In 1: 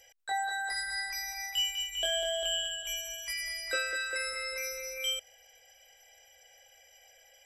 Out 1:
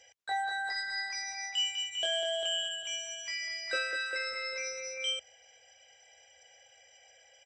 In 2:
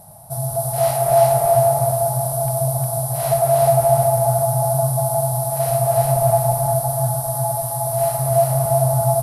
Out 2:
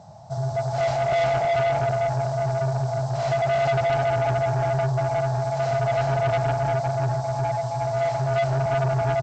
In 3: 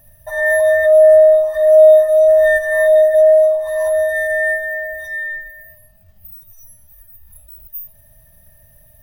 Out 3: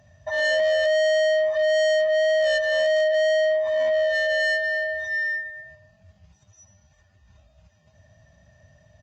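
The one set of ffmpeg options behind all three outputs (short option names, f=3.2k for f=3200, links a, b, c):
-af "highpass=f=71:w=0.5412,highpass=f=71:w=1.3066,aresample=16000,asoftclip=type=tanh:threshold=-19dB,aresample=44100" -ar 48000 -c:a libopus -b:a 48k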